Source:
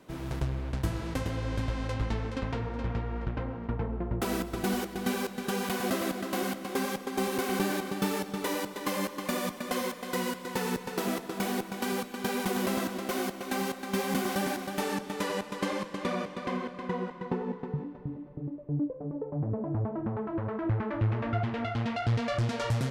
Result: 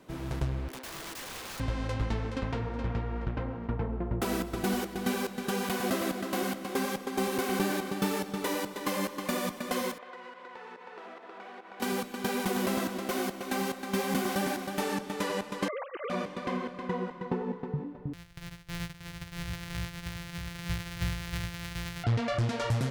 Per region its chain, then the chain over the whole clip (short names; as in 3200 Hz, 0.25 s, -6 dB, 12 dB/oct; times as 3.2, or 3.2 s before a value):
0.68–1.6 Chebyshev high-pass 250 Hz, order 10 + wrapped overs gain 36.5 dB
9.98–11.8 BPF 580–2200 Hz + compressor, threshold -42 dBFS
15.68–16.1 sine-wave speech + compressor, threshold -32 dBFS
18.13–22.04 sample sorter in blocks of 256 samples + EQ curve 140 Hz 0 dB, 240 Hz -20 dB, 410 Hz -16 dB, 710 Hz -14 dB, 1200 Hz -9 dB, 1800 Hz -1 dB, 4000 Hz -1 dB, 7700 Hz -5 dB
whole clip: dry